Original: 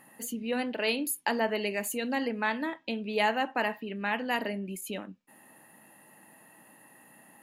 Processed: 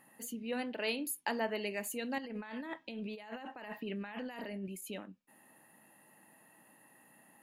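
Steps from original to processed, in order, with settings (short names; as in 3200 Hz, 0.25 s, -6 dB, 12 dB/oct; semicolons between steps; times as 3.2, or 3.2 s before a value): 2.18–4.68 negative-ratio compressor -37 dBFS, ratio -1; gain -6.5 dB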